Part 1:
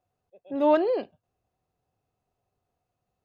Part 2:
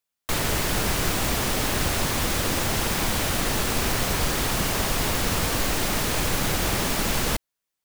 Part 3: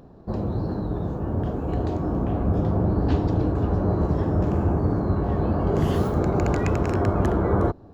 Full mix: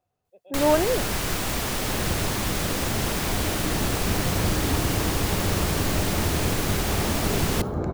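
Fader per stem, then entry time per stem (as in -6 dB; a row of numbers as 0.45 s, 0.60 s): +0.5 dB, -2.5 dB, -5.0 dB; 0.00 s, 0.25 s, 1.60 s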